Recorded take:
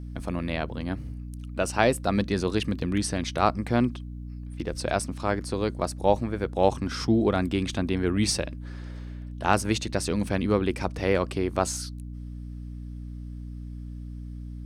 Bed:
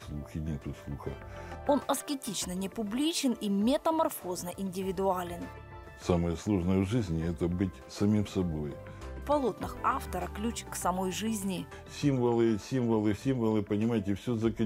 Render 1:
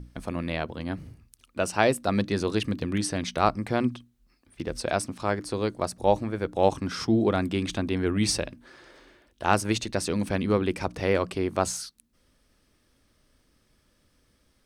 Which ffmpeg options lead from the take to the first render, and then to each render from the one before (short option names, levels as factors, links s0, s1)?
-af "bandreject=f=60:t=h:w=6,bandreject=f=120:t=h:w=6,bandreject=f=180:t=h:w=6,bandreject=f=240:t=h:w=6,bandreject=f=300:t=h:w=6"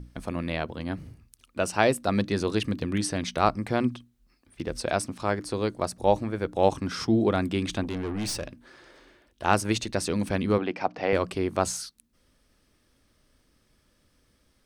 -filter_complex "[0:a]asettb=1/sr,asplit=3[s0][s1][s2];[s0]atrim=end=7.834[s3];[s1]atrim=start=7.83:end=9.43,asetpts=PTS-STARTPTS,afade=t=in:d=0.004:c=qsin,afade=t=out:st=1.596:d=0.004:c=qsin,aeval=exprs='(tanh(22.4*val(0)+0.35)-tanh(0.35))/22.4':c=same[s4];[s2]atrim=start=9.426[s5];[s3][s4]acrossfade=d=0.004:c1=hsin:c2=qsin[s6];[s6][s5]acrossfade=d=0.004:c1=qsin:c2=hsin,asettb=1/sr,asplit=3[s7][s8][s9];[s7]atrim=end=10.584[s10];[s8]atrim=start=10.58:end=11.13,asetpts=PTS-STARTPTS,afade=t=in:d=0.004:c=qsin,afade=t=out:st=0.546:d=0.004:c=qsin,highpass=230,equalizer=f=390:t=q:w=4:g=-4,equalizer=f=740:t=q:w=4:g=9,equalizer=f=3700:t=q:w=4:g=-6,lowpass=f=4800:w=0.5412,lowpass=f=4800:w=1.3066[s11];[s9]atrim=start=11.126[s12];[s10][s11]acrossfade=d=0.004:c1=hsin:c2=qsin[s13];[s13][s12]acrossfade=d=0.004:c1=qsin:c2=hsin"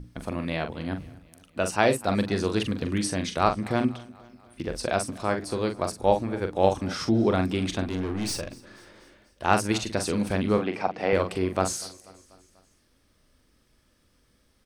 -filter_complex "[0:a]asplit=2[s0][s1];[s1]adelay=43,volume=0.422[s2];[s0][s2]amix=inputs=2:normalize=0,aecho=1:1:244|488|732|976:0.0794|0.0453|0.0258|0.0147"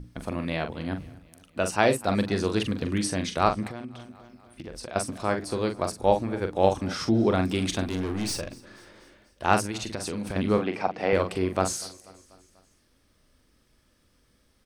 -filter_complex "[0:a]asettb=1/sr,asplit=3[s0][s1][s2];[s0]atrim=end=3.674[s3];[s1]atrim=start=3.67:end=4.96,asetpts=PTS-STARTPTS,afade=t=in:d=0.004:c=qsin,afade=t=out:st=1.286:d=0.004:c=qsin,acompressor=threshold=0.0158:ratio=4:attack=3.2:release=140:knee=1:detection=peak[s4];[s2]atrim=start=4.956[s5];[s3][s4]acrossfade=d=0.004:c1=hsin:c2=qsin[s6];[s6][s5]acrossfade=d=0.004:c1=qsin:c2=hsin,asettb=1/sr,asplit=3[s7][s8][s9];[s7]atrim=end=7.464[s10];[s8]atrim=start=7.46:end=8.22,asetpts=PTS-STARTPTS,afade=t=in:d=0.004:c=qsin,afade=t=out:st=0.756:d=0.004:c=qsin,highshelf=f=5400:g=8.5[s11];[s9]atrim=start=8.216[s12];[s10][s11]acrossfade=d=0.004:c1=hsin:c2=qsin[s13];[s13][s12]acrossfade=d=0.004:c1=qsin:c2=hsin,asettb=1/sr,asplit=3[s14][s15][s16];[s14]atrim=end=9.654[s17];[s15]atrim=start=9.65:end=10.36,asetpts=PTS-STARTPTS,afade=t=in:d=0.004:c=qsin,afade=t=out:st=0.706:d=0.004:c=qsin,acompressor=threshold=0.0398:ratio=5:attack=3.2:release=140:knee=1:detection=peak[s18];[s16]atrim=start=10.356[s19];[s17][s18]acrossfade=d=0.004:c1=hsin:c2=qsin[s20];[s20][s19]acrossfade=d=0.004:c1=qsin:c2=hsin"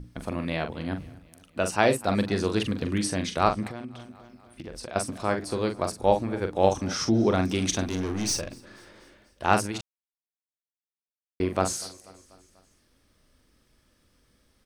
-filter_complex "[0:a]asettb=1/sr,asplit=3[s0][s1][s2];[s0]atrim=end=6.714[s3];[s1]atrim=start=6.71:end=8.39,asetpts=PTS-STARTPTS,afade=t=in:d=0.004:c=qsin,afade=t=out:st=1.676:d=0.004:c=qsin,equalizer=f=6000:w=5.2:g=11[s4];[s2]atrim=start=8.386[s5];[s3][s4]acrossfade=d=0.004:c1=hsin:c2=qsin[s6];[s6][s5]acrossfade=d=0.004:c1=qsin:c2=hsin,asplit=3[s7][s8][s9];[s7]atrim=end=9.81,asetpts=PTS-STARTPTS,afade=t=out:st=9.806:d=0.004:c=hsin[s10];[s8]atrim=start=9.81:end=11.4,asetpts=PTS-STARTPTS,volume=0[s11];[s9]atrim=start=11.4,asetpts=PTS-STARTPTS,afade=t=in:d=0.004:c=hsin[s12];[s10][s11][s12]concat=n=3:v=0:a=1"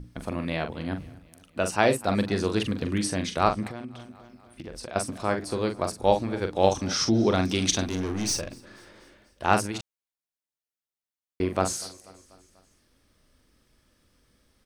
-filter_complex "[0:a]asettb=1/sr,asplit=3[s0][s1][s2];[s0]atrim=end=6.054[s3];[s1]atrim=start=6.05:end=7.87,asetpts=PTS-STARTPTS,afade=t=in:d=0.004:c=qsin,afade=t=out:st=1.816:d=0.004:c=qsin,equalizer=f=4200:w=1.1:g=6[s4];[s2]atrim=start=7.866[s5];[s3][s4]acrossfade=d=0.004:c1=hsin:c2=qsin[s6];[s6][s5]acrossfade=d=0.004:c1=qsin:c2=hsin"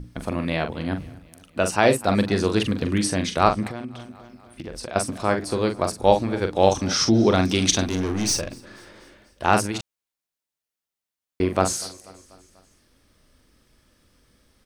-af "volume=1.68,alimiter=limit=0.794:level=0:latency=1"